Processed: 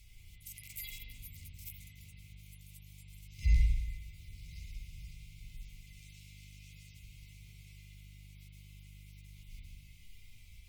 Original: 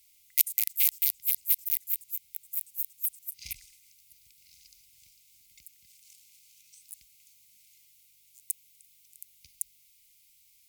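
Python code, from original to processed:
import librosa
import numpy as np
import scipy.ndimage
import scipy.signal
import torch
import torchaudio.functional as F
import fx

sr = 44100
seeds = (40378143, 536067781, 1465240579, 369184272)

y = fx.hpss_only(x, sr, part='harmonic')
y = fx.riaa(y, sr, side='playback')
y = fx.rev_spring(y, sr, rt60_s=1.1, pass_ms=(36, 60), chirp_ms=50, drr_db=-4.0)
y = F.gain(torch.from_numpy(y), 12.0).numpy()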